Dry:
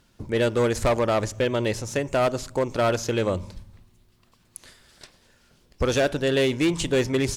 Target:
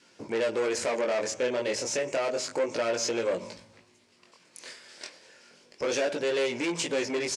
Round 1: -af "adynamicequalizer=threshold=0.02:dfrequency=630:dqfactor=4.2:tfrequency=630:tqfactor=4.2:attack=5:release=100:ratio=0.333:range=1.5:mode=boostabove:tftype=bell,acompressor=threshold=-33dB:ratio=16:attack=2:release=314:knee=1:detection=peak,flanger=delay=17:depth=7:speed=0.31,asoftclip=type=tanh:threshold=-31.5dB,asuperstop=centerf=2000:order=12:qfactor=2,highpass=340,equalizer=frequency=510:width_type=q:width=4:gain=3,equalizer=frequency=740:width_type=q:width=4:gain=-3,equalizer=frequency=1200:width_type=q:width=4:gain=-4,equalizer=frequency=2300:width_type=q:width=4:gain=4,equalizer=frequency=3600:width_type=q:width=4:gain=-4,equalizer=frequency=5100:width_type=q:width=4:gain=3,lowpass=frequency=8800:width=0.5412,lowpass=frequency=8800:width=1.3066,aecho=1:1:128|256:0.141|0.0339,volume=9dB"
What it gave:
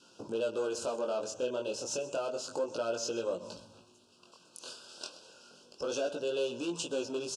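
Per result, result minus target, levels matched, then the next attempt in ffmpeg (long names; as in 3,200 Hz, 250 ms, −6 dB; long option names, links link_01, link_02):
downward compressor: peak gain reduction +9 dB; echo-to-direct +11.5 dB; 2,000 Hz band −5.5 dB
-af "adynamicequalizer=threshold=0.02:dfrequency=630:dqfactor=4.2:tfrequency=630:tqfactor=4.2:attack=5:release=100:ratio=0.333:range=1.5:mode=boostabove:tftype=bell,acompressor=threshold=-23.5dB:ratio=16:attack=2:release=314:knee=1:detection=peak,flanger=delay=17:depth=7:speed=0.31,asoftclip=type=tanh:threshold=-31.5dB,asuperstop=centerf=2000:order=12:qfactor=2,highpass=340,equalizer=frequency=510:width_type=q:width=4:gain=3,equalizer=frequency=740:width_type=q:width=4:gain=-3,equalizer=frequency=1200:width_type=q:width=4:gain=-4,equalizer=frequency=2300:width_type=q:width=4:gain=4,equalizer=frequency=3600:width_type=q:width=4:gain=-4,equalizer=frequency=5100:width_type=q:width=4:gain=3,lowpass=frequency=8800:width=0.5412,lowpass=frequency=8800:width=1.3066,aecho=1:1:128|256:0.141|0.0339,volume=9dB"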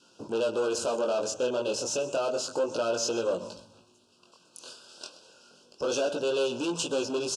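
echo-to-direct +11.5 dB; 2,000 Hz band −5.5 dB
-af "adynamicequalizer=threshold=0.02:dfrequency=630:dqfactor=4.2:tfrequency=630:tqfactor=4.2:attack=5:release=100:ratio=0.333:range=1.5:mode=boostabove:tftype=bell,acompressor=threshold=-23.5dB:ratio=16:attack=2:release=314:knee=1:detection=peak,flanger=delay=17:depth=7:speed=0.31,asoftclip=type=tanh:threshold=-31.5dB,asuperstop=centerf=2000:order=12:qfactor=2,highpass=340,equalizer=frequency=510:width_type=q:width=4:gain=3,equalizer=frequency=740:width_type=q:width=4:gain=-3,equalizer=frequency=1200:width_type=q:width=4:gain=-4,equalizer=frequency=2300:width_type=q:width=4:gain=4,equalizer=frequency=3600:width_type=q:width=4:gain=-4,equalizer=frequency=5100:width_type=q:width=4:gain=3,lowpass=frequency=8800:width=0.5412,lowpass=frequency=8800:width=1.3066,aecho=1:1:128:0.0376,volume=9dB"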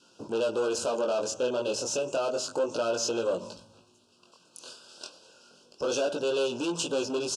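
2,000 Hz band −5.5 dB
-af "adynamicequalizer=threshold=0.02:dfrequency=630:dqfactor=4.2:tfrequency=630:tqfactor=4.2:attack=5:release=100:ratio=0.333:range=1.5:mode=boostabove:tftype=bell,acompressor=threshold=-23.5dB:ratio=16:attack=2:release=314:knee=1:detection=peak,flanger=delay=17:depth=7:speed=0.31,asoftclip=type=tanh:threshold=-31.5dB,highpass=340,equalizer=frequency=510:width_type=q:width=4:gain=3,equalizer=frequency=740:width_type=q:width=4:gain=-3,equalizer=frequency=1200:width_type=q:width=4:gain=-4,equalizer=frequency=2300:width_type=q:width=4:gain=4,equalizer=frequency=3600:width_type=q:width=4:gain=-4,equalizer=frequency=5100:width_type=q:width=4:gain=3,lowpass=frequency=8800:width=0.5412,lowpass=frequency=8800:width=1.3066,aecho=1:1:128:0.0376,volume=9dB"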